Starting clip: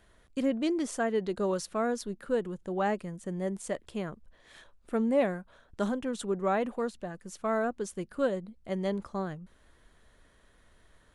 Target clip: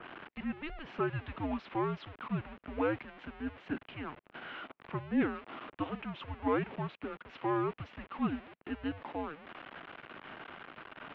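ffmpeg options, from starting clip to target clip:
-af "aeval=exprs='val(0)+0.5*0.015*sgn(val(0))':c=same,highpass=f=540:t=q:w=0.5412,highpass=f=540:t=q:w=1.307,lowpass=f=3.2k:t=q:w=0.5176,lowpass=f=3.2k:t=q:w=0.7071,lowpass=f=3.2k:t=q:w=1.932,afreqshift=-310,acompressor=mode=upward:threshold=-42dB:ratio=2.5,adynamicequalizer=threshold=0.01:dfrequency=2000:dqfactor=0.7:tfrequency=2000:tqfactor=0.7:attack=5:release=100:ratio=0.375:range=2:mode=boostabove:tftype=highshelf,volume=-1.5dB"

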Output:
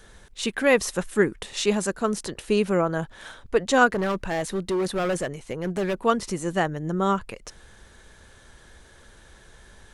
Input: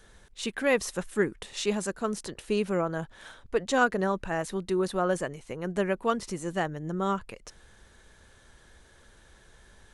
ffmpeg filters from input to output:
-filter_complex "[0:a]asettb=1/sr,asplit=3[a][b][c];[a]atrim=end=3.944[d];[b]atrim=start=3.94:end=6.02,asetpts=PTS-STARTPTS,afade=t=in:d=0.004:c=qsin,afade=t=out:st=2.076:d=0.004:c=qsin,volume=27dB,asoftclip=hard,volume=-27dB[e];[c]atrim=start=6.016[f];[d][e]acrossfade=d=0.004:c1=hsin:c2=qsin[g];[g][f]acrossfade=d=0.004:c1=qsin:c2=hsin,volume=5.5dB"

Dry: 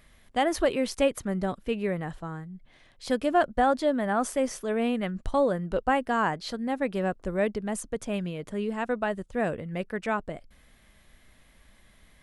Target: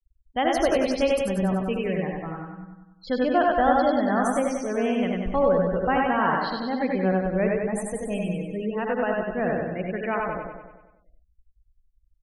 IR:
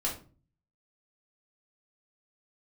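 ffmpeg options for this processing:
-filter_complex "[0:a]asplit=2[a][b];[b]aecho=0:1:52|80:0.211|0.631[c];[a][c]amix=inputs=2:normalize=0,afftfilt=real='re*gte(hypot(re,im),0.0224)':imag='im*gte(hypot(re,im),0.0224)':win_size=1024:overlap=0.75,asplit=2[d][e];[e]aecho=0:1:96|192|288|384|480|576|672|768:0.668|0.374|0.21|0.117|0.0657|0.0368|0.0206|0.0115[f];[d][f]amix=inputs=2:normalize=0"

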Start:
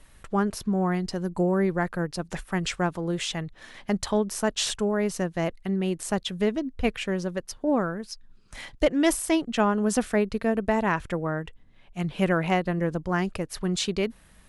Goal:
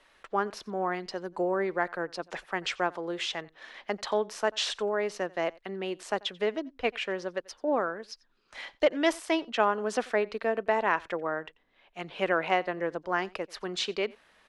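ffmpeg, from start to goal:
-filter_complex "[0:a]acrossover=split=340 5400:gain=0.0708 1 0.112[a][b][c];[a][b][c]amix=inputs=3:normalize=0,aecho=1:1:89:0.0631"

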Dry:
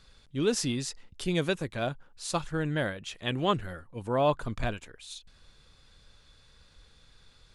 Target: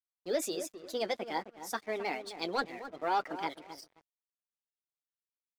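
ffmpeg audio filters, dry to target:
-filter_complex "[0:a]highpass=f=200:w=0.5412,highpass=f=200:w=1.3066,highshelf=f=6.5k:g=-5.5,asetrate=59535,aresample=44100,asplit=2[a][b];[b]aeval=exprs='0.0562*(abs(mod(val(0)/0.0562+3,4)-2)-1)':c=same,volume=-8dB[c];[a][c]amix=inputs=2:normalize=0,afftfilt=real='re*gte(hypot(re,im),0.00631)':imag='im*gte(hypot(re,im),0.00631)':win_size=1024:overlap=0.75,flanger=delay=5.8:depth=2:regen=-42:speed=0.83:shape=sinusoidal,asplit=2[d][e];[e]adelay=262,lowpass=f=1.1k:p=1,volume=-9dB,asplit=2[f][g];[g]adelay=262,lowpass=f=1.1k:p=1,volume=0.31,asplit=2[h][i];[i]adelay=262,lowpass=f=1.1k:p=1,volume=0.31,asplit=2[j][k];[k]adelay=262,lowpass=f=1.1k:p=1,volume=0.31[l];[f][h][j][l]amix=inputs=4:normalize=0[m];[d][m]amix=inputs=2:normalize=0,aeval=exprs='sgn(val(0))*max(abs(val(0))-0.002,0)':c=same,volume=-1.5dB"

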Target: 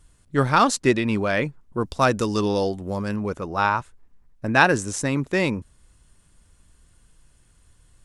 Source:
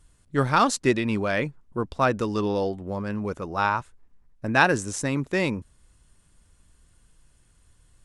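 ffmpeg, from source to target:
-filter_complex "[0:a]asettb=1/sr,asplit=3[a][b][c];[a]atrim=end=1.814[d];[b]atrim=start=1.81:end=3.16,asetpts=PTS-STARTPTS,afade=t=in:d=0.004:c=qsin,afade=t=out:st=1.346:d=0.004:c=qsin,bass=f=250:g=1,treble=f=4k:g=10[e];[c]atrim=start=3.156[f];[d][e]acrossfade=d=0.004:c1=hsin:c2=qsin[g];[g][f]acrossfade=d=0.004:c1=qsin:c2=hsin,volume=2.5dB"

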